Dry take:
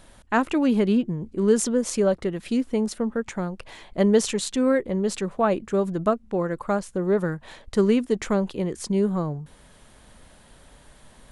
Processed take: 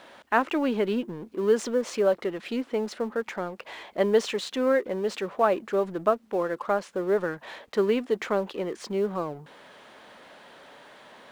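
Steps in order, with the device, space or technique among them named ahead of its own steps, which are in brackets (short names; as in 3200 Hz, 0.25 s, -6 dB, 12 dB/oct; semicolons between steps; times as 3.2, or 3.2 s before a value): phone line with mismatched companding (BPF 380–3500 Hz; G.711 law mismatch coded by mu)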